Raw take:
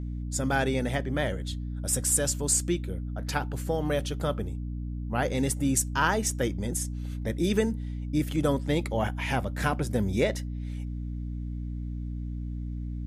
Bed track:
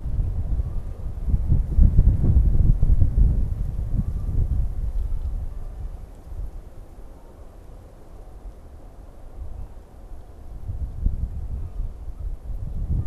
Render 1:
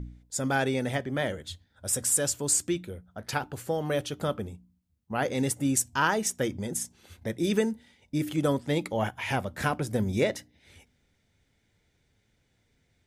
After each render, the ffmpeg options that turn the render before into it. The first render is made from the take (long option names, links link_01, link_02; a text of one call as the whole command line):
ffmpeg -i in.wav -af "bandreject=frequency=60:width_type=h:width=4,bandreject=frequency=120:width_type=h:width=4,bandreject=frequency=180:width_type=h:width=4,bandreject=frequency=240:width_type=h:width=4,bandreject=frequency=300:width_type=h:width=4" out.wav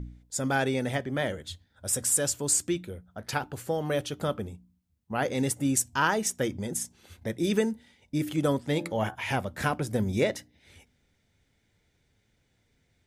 ffmpeg -i in.wav -filter_complex "[0:a]asplit=3[link_01][link_02][link_03];[link_01]afade=type=out:start_time=8.69:duration=0.02[link_04];[link_02]bandreject=frequency=84.22:width_type=h:width=4,bandreject=frequency=168.44:width_type=h:width=4,bandreject=frequency=252.66:width_type=h:width=4,bandreject=frequency=336.88:width_type=h:width=4,bandreject=frequency=421.1:width_type=h:width=4,bandreject=frequency=505.32:width_type=h:width=4,bandreject=frequency=589.54:width_type=h:width=4,bandreject=frequency=673.76:width_type=h:width=4,bandreject=frequency=757.98:width_type=h:width=4,bandreject=frequency=842.2:width_type=h:width=4,bandreject=frequency=926.42:width_type=h:width=4,bandreject=frequency=1010.64:width_type=h:width=4,bandreject=frequency=1094.86:width_type=h:width=4,bandreject=frequency=1179.08:width_type=h:width=4,bandreject=frequency=1263.3:width_type=h:width=4,bandreject=frequency=1347.52:width_type=h:width=4,bandreject=frequency=1431.74:width_type=h:width=4,bandreject=frequency=1515.96:width_type=h:width=4,bandreject=frequency=1600.18:width_type=h:width=4,bandreject=frequency=1684.4:width_type=h:width=4,bandreject=frequency=1768.62:width_type=h:width=4,afade=type=in:start_time=8.69:duration=0.02,afade=type=out:start_time=9.14:duration=0.02[link_05];[link_03]afade=type=in:start_time=9.14:duration=0.02[link_06];[link_04][link_05][link_06]amix=inputs=3:normalize=0" out.wav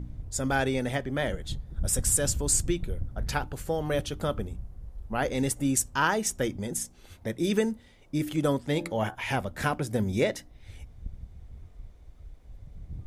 ffmpeg -i in.wav -i bed.wav -filter_complex "[1:a]volume=-15.5dB[link_01];[0:a][link_01]amix=inputs=2:normalize=0" out.wav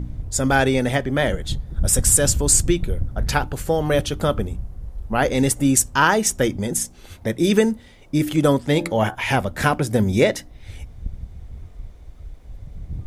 ffmpeg -i in.wav -af "volume=9dB,alimiter=limit=-3dB:level=0:latency=1" out.wav